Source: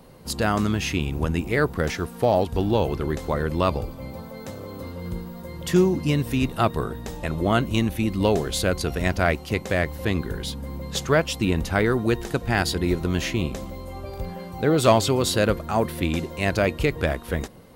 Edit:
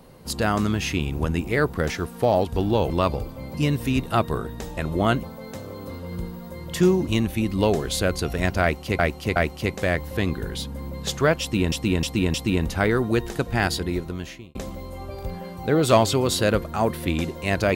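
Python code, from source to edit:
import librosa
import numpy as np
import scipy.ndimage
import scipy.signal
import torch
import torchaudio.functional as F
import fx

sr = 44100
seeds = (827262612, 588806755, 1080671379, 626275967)

y = fx.edit(x, sr, fx.cut(start_s=2.9, length_s=0.62),
    fx.move(start_s=6.0, length_s=1.69, to_s=4.16),
    fx.repeat(start_s=9.24, length_s=0.37, count=3),
    fx.repeat(start_s=11.29, length_s=0.31, count=4),
    fx.fade_out_span(start_s=12.58, length_s=0.92), tone=tone)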